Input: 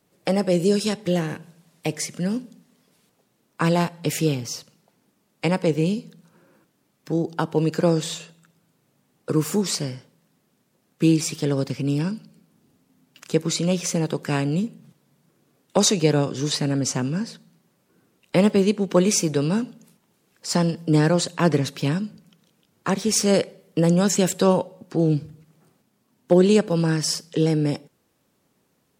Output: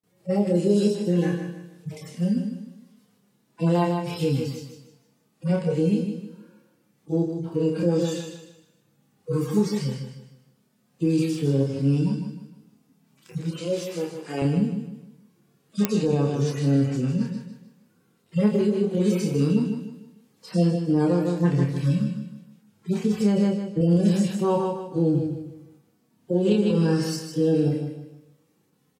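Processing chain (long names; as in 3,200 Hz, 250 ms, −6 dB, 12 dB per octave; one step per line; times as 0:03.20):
harmonic-percussive split with one part muted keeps harmonic
0:13.58–0:14.42: high-pass filter 380 Hz 12 dB per octave
0:23.03–0:23.81: spectral tilt −2 dB per octave
repeating echo 154 ms, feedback 35%, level −8 dB
brickwall limiter −14 dBFS, peak gain reduction 9.5 dB
notch filter 580 Hz, Q 17
noise gate with hold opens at −60 dBFS
double-tracking delay 29 ms −4 dB
coupled-rooms reverb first 0.77 s, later 2.5 s, from −19 dB, DRR 18 dB
digital clicks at 0:15.85, −6 dBFS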